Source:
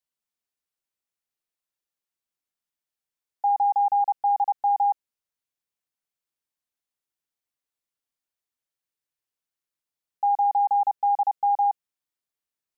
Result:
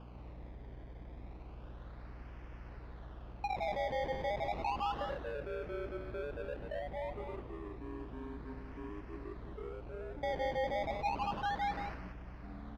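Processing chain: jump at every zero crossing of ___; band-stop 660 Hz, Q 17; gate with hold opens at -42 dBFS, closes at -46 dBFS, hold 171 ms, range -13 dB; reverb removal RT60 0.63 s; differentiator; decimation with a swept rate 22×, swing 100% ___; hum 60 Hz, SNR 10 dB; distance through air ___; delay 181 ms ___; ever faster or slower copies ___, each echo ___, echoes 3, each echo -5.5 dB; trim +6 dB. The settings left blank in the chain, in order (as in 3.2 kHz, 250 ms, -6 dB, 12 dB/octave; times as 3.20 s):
-43.5 dBFS, 0.31 Hz, 280 m, -6 dB, 144 ms, -6 st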